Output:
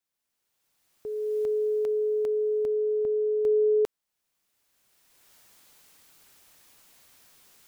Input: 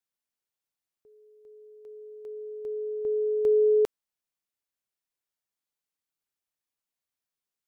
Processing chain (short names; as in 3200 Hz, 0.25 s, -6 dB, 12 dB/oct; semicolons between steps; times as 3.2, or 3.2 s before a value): recorder AGC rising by 20 dB/s; in parallel at 0 dB: limiter -26 dBFS, peak gain reduction 8.5 dB; on the sum: gain -4 dB